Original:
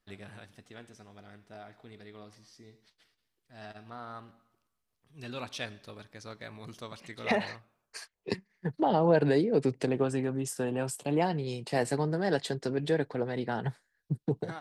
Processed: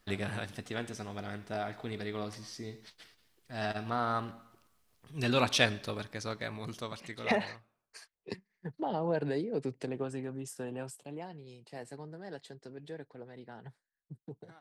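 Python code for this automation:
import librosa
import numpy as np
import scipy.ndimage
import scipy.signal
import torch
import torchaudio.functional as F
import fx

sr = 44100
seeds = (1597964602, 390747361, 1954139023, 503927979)

y = fx.gain(x, sr, db=fx.line((5.62, 11.5), (7.08, 1.5), (7.99, -8.0), (10.81, -8.0), (11.21, -16.0)))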